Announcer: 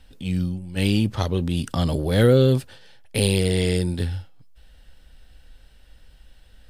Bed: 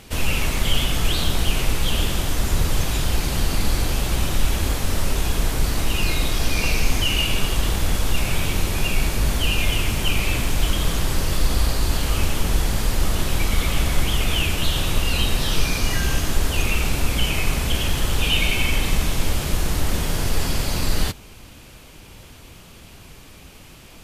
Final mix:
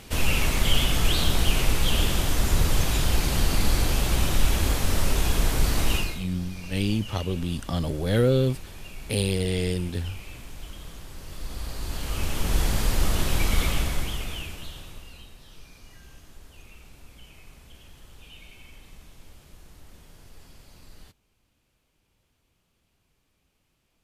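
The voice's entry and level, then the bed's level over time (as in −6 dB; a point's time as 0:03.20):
5.95 s, −5.0 dB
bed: 0:05.95 −1.5 dB
0:06.26 −20 dB
0:11.15 −20 dB
0:12.62 −2.5 dB
0:13.64 −2.5 dB
0:15.35 −28 dB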